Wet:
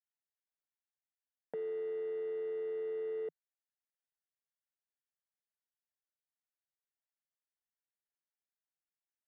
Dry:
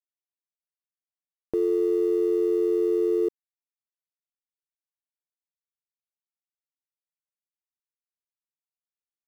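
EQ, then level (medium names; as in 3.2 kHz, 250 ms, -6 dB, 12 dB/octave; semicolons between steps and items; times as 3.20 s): Chebyshev band-pass 160–2800 Hz, order 4; bass shelf 470 Hz -9.5 dB; static phaser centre 1.7 kHz, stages 8; +1.0 dB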